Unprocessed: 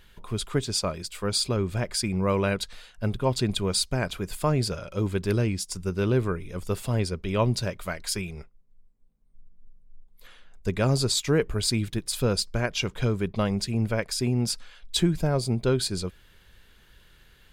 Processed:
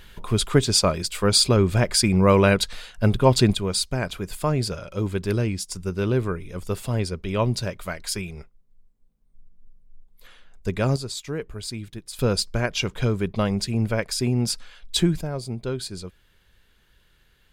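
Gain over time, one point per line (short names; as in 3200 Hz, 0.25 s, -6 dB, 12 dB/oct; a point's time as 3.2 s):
+8 dB
from 3.53 s +1 dB
from 10.96 s -7.5 dB
from 12.19 s +2.5 dB
from 15.21 s -5 dB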